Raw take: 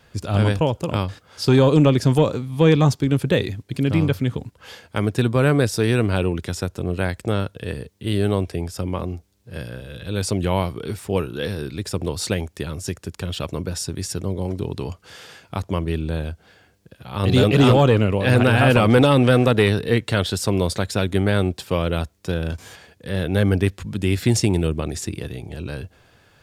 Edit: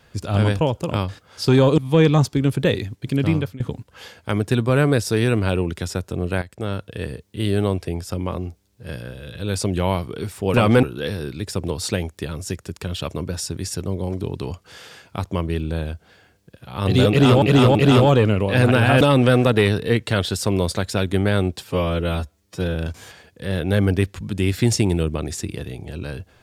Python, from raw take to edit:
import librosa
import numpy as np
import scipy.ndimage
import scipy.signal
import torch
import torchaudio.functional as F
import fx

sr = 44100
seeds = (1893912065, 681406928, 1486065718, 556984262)

y = fx.edit(x, sr, fx.cut(start_s=1.78, length_s=0.67),
    fx.fade_out_to(start_s=3.98, length_s=0.29, floor_db=-21.5),
    fx.fade_in_from(start_s=7.09, length_s=0.49, floor_db=-14.0),
    fx.repeat(start_s=17.47, length_s=0.33, count=3),
    fx.move(start_s=18.73, length_s=0.29, to_s=11.21),
    fx.stretch_span(start_s=21.65, length_s=0.74, factor=1.5), tone=tone)